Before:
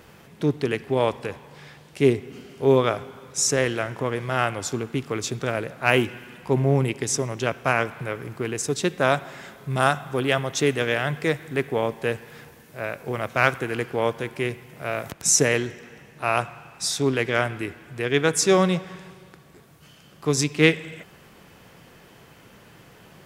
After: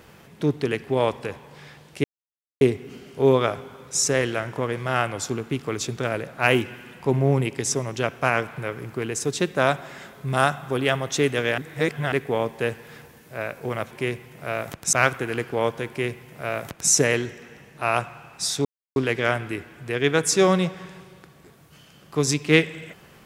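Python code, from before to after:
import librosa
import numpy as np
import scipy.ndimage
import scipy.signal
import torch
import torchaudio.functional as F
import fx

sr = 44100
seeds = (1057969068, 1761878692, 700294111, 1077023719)

y = fx.edit(x, sr, fx.insert_silence(at_s=2.04, length_s=0.57),
    fx.reverse_span(start_s=11.01, length_s=0.54),
    fx.duplicate(start_s=14.29, length_s=1.02, to_s=13.34),
    fx.insert_silence(at_s=17.06, length_s=0.31), tone=tone)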